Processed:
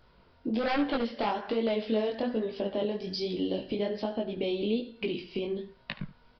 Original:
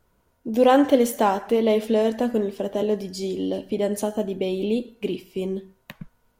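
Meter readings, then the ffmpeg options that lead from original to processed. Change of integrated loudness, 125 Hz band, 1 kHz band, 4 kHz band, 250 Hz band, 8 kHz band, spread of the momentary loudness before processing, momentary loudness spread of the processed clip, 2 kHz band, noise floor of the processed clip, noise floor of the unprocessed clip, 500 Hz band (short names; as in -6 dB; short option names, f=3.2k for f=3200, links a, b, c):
-8.5 dB, -6.5 dB, -10.0 dB, -2.0 dB, -7.5 dB, under -25 dB, 12 LU, 7 LU, -4.0 dB, -61 dBFS, -67 dBFS, -9.0 dB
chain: -filter_complex "[0:a]highshelf=f=2.5k:g=8.5,aeval=exprs='0.251*(abs(mod(val(0)/0.251+3,4)-2)-1)':c=same,acompressor=threshold=-36dB:ratio=3,aresample=11025,aresample=44100,flanger=delay=17:depth=7.7:speed=1.2,asplit=2[a][b];[b]aecho=0:1:74:0.15[c];[a][c]amix=inputs=2:normalize=0,volume=7.5dB"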